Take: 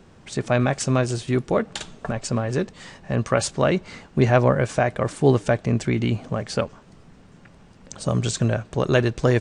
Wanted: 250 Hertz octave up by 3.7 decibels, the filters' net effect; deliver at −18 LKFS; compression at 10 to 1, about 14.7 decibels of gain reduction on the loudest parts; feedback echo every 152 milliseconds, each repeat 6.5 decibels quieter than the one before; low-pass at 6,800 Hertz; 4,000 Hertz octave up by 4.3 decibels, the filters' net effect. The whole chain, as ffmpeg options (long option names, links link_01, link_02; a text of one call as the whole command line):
ffmpeg -i in.wav -af "lowpass=6800,equalizer=frequency=250:width_type=o:gain=4.5,equalizer=frequency=4000:width_type=o:gain=6,acompressor=threshold=-25dB:ratio=10,aecho=1:1:152|304|456|608|760|912:0.473|0.222|0.105|0.0491|0.0231|0.0109,volume=12dB" out.wav